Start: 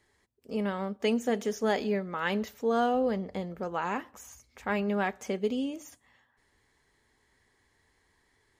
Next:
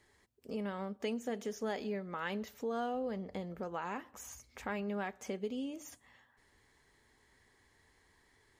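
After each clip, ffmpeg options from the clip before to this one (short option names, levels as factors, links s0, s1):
-af "acompressor=threshold=0.00631:ratio=2,volume=1.12"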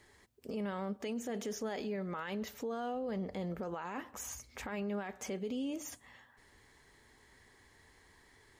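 -af "alimiter=level_in=4.22:limit=0.0631:level=0:latency=1:release=26,volume=0.237,volume=1.88"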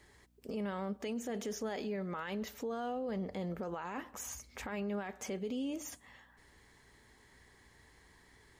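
-af "aeval=exprs='val(0)+0.000355*(sin(2*PI*60*n/s)+sin(2*PI*2*60*n/s)/2+sin(2*PI*3*60*n/s)/3+sin(2*PI*4*60*n/s)/4+sin(2*PI*5*60*n/s)/5)':c=same"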